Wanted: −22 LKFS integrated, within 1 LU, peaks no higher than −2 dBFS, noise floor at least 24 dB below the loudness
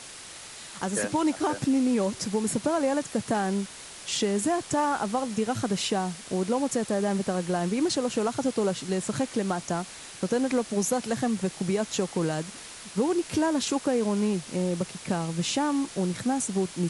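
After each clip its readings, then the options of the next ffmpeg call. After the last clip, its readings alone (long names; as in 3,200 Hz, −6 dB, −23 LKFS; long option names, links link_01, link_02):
background noise floor −44 dBFS; target noise floor −52 dBFS; integrated loudness −27.5 LKFS; sample peak −15.0 dBFS; target loudness −22.0 LKFS
→ -af "afftdn=noise_reduction=8:noise_floor=-44"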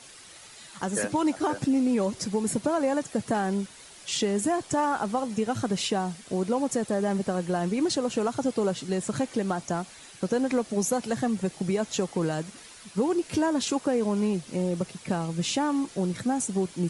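background noise floor −49 dBFS; target noise floor −52 dBFS
→ -af "afftdn=noise_reduction=6:noise_floor=-49"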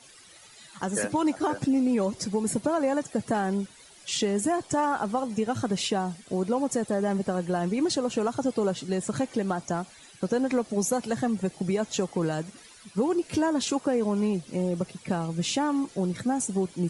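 background noise floor −52 dBFS; integrated loudness −28.0 LKFS; sample peak −15.0 dBFS; target loudness −22.0 LKFS
→ -af "volume=6dB"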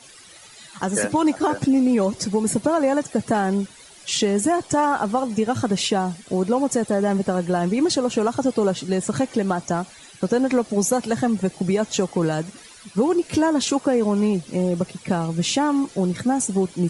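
integrated loudness −22.0 LKFS; sample peak −9.0 dBFS; background noise floor −46 dBFS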